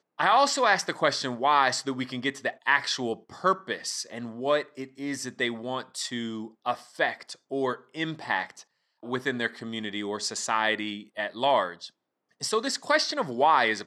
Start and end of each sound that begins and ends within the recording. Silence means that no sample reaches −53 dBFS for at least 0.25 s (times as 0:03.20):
0:09.03–0:11.90